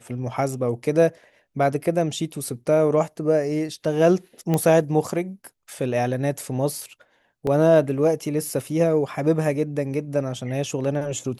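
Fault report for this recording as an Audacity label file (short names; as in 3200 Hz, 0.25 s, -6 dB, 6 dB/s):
4.540000	4.540000	pop -10 dBFS
7.470000	7.470000	gap 2.3 ms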